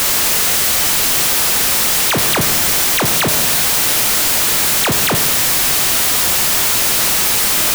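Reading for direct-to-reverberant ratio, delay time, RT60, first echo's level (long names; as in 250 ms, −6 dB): 7.0 dB, no echo audible, 1.6 s, no echo audible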